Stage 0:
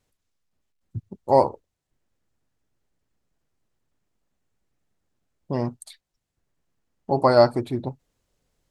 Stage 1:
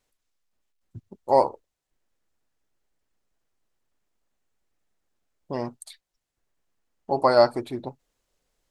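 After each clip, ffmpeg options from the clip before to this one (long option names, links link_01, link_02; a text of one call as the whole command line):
ffmpeg -i in.wav -af "equalizer=frequency=110:width=0.48:gain=-10" out.wav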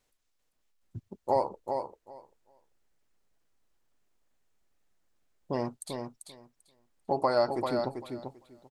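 ffmpeg -i in.wav -af "acompressor=threshold=-26dB:ratio=2.5,aecho=1:1:392|784|1176:0.501|0.0752|0.0113" out.wav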